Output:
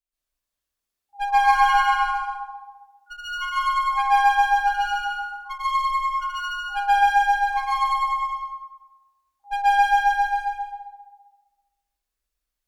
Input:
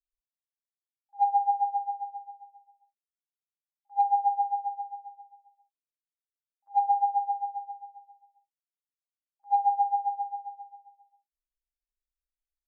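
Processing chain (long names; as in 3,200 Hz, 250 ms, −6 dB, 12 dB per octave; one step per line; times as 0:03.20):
asymmetric clip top −33.5 dBFS, bottom −19.5 dBFS
delay with pitch and tempo change per echo 437 ms, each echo +5 semitones, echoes 2, each echo −6 dB
dense smooth reverb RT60 0.95 s, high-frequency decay 0.75×, pre-delay 115 ms, DRR −9.5 dB
level +1.5 dB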